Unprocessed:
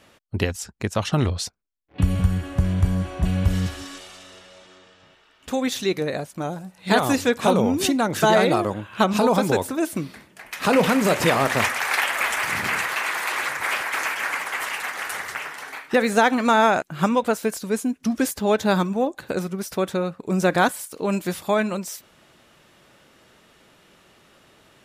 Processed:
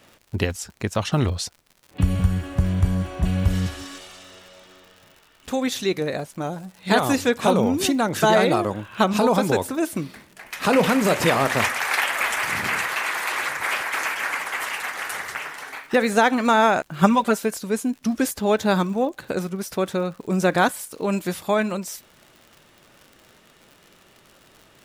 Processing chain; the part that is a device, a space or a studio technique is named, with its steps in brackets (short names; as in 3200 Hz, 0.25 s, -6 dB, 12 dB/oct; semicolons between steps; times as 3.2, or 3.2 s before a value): vinyl LP (crackle 91/s -37 dBFS; pink noise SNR 44 dB); 17.01–17.43 comb 5.1 ms, depth 82%